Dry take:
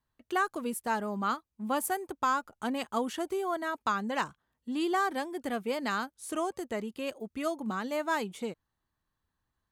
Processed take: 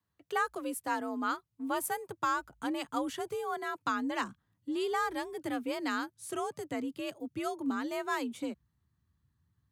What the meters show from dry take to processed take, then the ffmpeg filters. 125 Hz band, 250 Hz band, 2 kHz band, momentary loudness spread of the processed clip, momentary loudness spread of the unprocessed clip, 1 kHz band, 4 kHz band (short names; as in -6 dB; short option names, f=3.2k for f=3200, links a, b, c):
-8.0 dB, -1.0 dB, -2.0 dB, 6 LU, 7 LU, -3.0 dB, -2.0 dB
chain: -af "afreqshift=53,asubboost=boost=5:cutoff=210,volume=-2dB"